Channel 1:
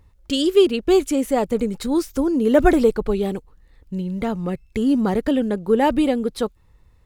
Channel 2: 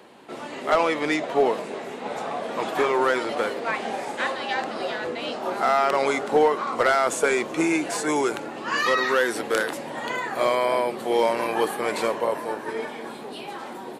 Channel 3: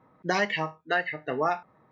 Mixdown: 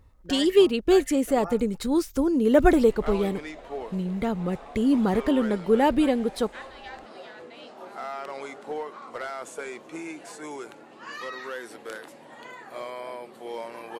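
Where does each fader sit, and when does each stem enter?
-3.0 dB, -14.5 dB, -12.0 dB; 0.00 s, 2.35 s, 0.00 s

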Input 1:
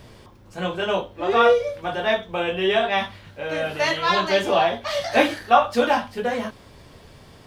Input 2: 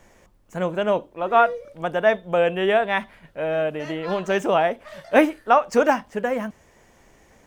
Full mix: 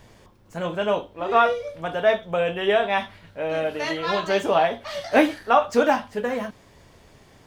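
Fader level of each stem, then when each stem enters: -6.5 dB, -2.5 dB; 0.00 s, 0.00 s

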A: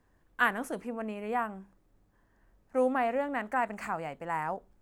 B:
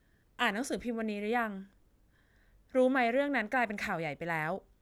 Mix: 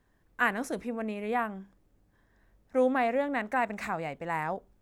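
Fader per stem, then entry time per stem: -2.5 dB, -6.0 dB; 0.00 s, 0.00 s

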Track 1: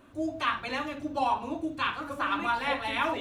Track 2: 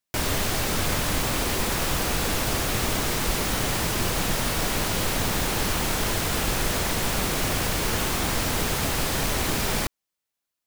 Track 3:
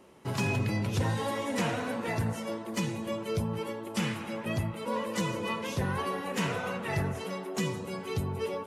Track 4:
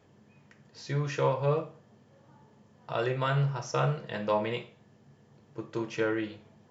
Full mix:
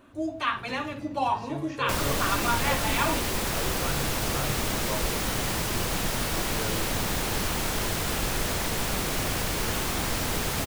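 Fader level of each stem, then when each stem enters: +1.0 dB, -3.0 dB, -15.5 dB, -8.0 dB; 0.00 s, 1.75 s, 0.30 s, 0.60 s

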